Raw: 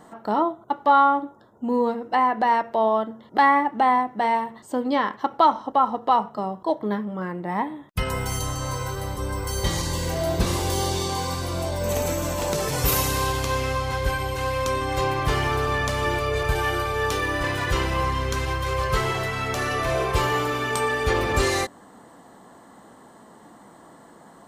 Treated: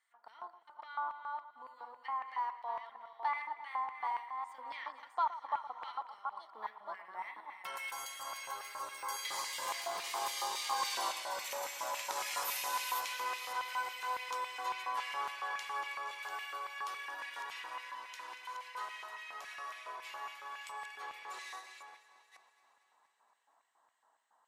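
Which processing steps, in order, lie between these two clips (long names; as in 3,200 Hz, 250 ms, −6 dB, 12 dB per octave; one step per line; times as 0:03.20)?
delay that plays each chunk backwards 386 ms, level −6.5 dB
source passing by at 0:10.98, 14 m/s, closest 3 metres
downward compressor 12 to 1, threshold −41 dBFS, peak gain reduction 16.5 dB
auto-filter high-pass square 3.6 Hz 940–2,200 Hz
high-pass filter 62 Hz
delay that swaps between a low-pass and a high-pass 117 ms, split 1,600 Hz, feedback 80%, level −13.5 dB
level +9 dB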